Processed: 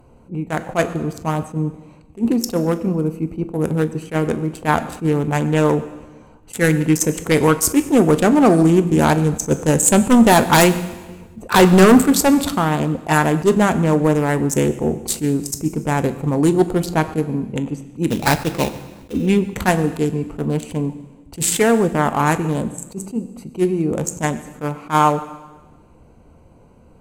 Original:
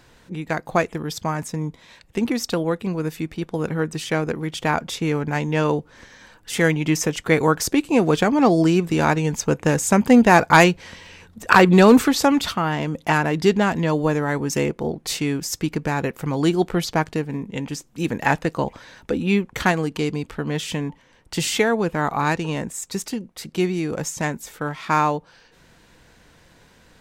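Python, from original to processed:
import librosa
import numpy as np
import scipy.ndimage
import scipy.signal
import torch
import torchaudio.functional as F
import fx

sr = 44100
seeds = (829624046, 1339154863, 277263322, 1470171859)

y = fx.wiener(x, sr, points=25)
y = fx.high_shelf_res(y, sr, hz=6500.0, db=10.5, q=1.5)
y = fx.fold_sine(y, sr, drive_db=7, ceiling_db=-1.0)
y = fx.sample_hold(y, sr, seeds[0], rate_hz=3200.0, jitter_pct=20, at=(18.09, 19.12), fade=0.02)
y = fx.rev_fdn(y, sr, rt60_s=1.2, lf_ratio=1.4, hf_ratio=1.0, size_ms=78.0, drr_db=10.0)
y = fx.attack_slew(y, sr, db_per_s=340.0)
y = F.gain(torch.from_numpy(y), -5.0).numpy()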